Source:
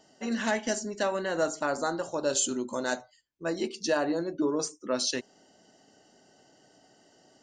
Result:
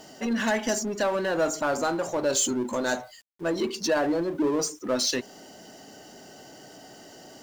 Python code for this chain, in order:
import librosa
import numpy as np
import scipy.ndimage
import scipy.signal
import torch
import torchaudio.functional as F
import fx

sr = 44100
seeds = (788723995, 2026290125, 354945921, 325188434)

y = fx.spec_gate(x, sr, threshold_db=-30, keep='strong')
y = fx.quant_dither(y, sr, seeds[0], bits=12, dither='none')
y = fx.power_curve(y, sr, exponent=0.7)